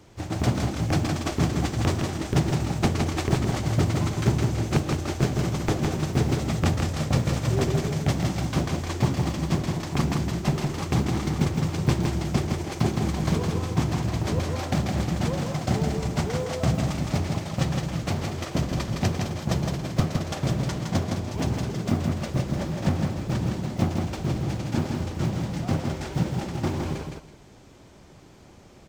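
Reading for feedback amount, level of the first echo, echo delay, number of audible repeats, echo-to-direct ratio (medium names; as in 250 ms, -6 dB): 21%, -4.0 dB, 163 ms, 2, -4.0 dB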